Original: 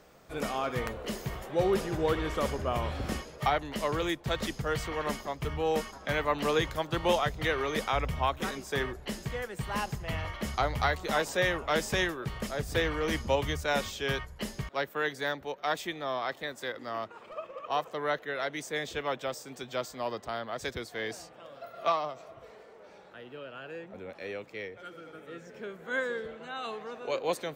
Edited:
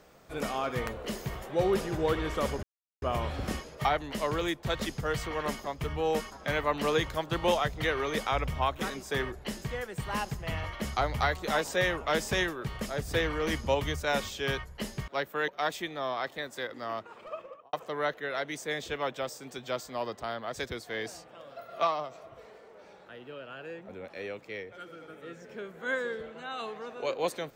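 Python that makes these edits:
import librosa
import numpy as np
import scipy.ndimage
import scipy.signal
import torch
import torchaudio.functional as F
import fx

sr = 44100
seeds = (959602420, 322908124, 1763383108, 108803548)

y = fx.studio_fade_out(x, sr, start_s=17.43, length_s=0.35)
y = fx.edit(y, sr, fx.insert_silence(at_s=2.63, length_s=0.39),
    fx.cut(start_s=15.09, length_s=0.44), tone=tone)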